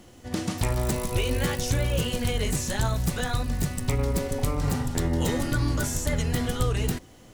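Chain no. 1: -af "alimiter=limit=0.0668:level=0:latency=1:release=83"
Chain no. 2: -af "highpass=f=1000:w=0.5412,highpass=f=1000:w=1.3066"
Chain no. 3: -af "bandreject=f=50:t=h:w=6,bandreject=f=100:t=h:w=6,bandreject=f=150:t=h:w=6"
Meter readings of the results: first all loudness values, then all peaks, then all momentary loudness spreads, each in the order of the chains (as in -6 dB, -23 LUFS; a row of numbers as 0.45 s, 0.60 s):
-33.5 LUFS, -34.0 LUFS, -27.5 LUFS; -23.5 dBFS, -13.5 dBFS, -13.5 dBFS; 1 LU, 6 LU, 3 LU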